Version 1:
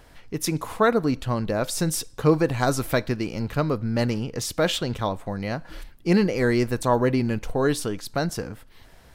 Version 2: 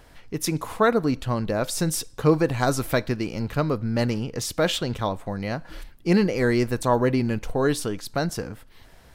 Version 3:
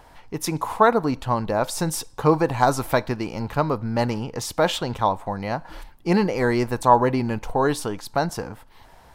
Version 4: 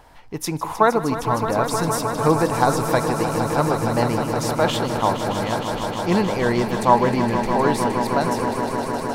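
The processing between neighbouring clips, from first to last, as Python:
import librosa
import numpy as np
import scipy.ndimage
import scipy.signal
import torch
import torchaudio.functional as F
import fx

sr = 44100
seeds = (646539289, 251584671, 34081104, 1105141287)

y1 = x
y2 = fx.peak_eq(y1, sr, hz=890.0, db=12.0, octaves=0.74)
y2 = y2 * librosa.db_to_amplitude(-1.0)
y3 = fx.echo_swell(y2, sr, ms=155, loudest=5, wet_db=-10.5)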